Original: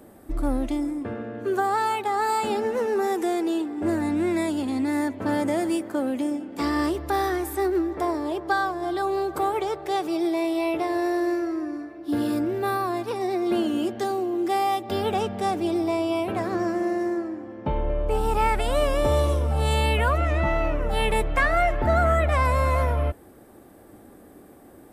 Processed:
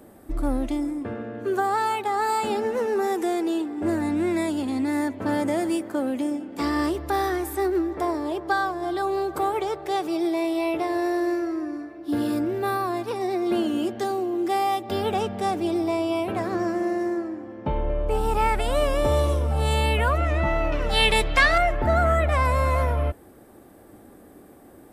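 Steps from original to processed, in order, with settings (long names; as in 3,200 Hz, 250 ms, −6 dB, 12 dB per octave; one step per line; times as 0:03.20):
0:20.72–0:21.58: parametric band 4,400 Hz +15 dB 1.7 octaves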